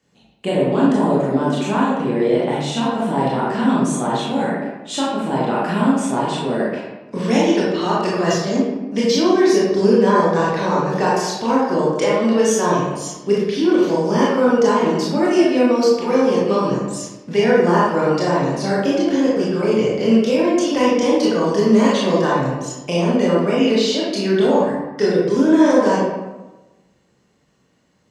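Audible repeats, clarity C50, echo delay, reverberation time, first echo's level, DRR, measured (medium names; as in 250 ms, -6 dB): no echo, -1.0 dB, no echo, 1.1 s, no echo, -6.5 dB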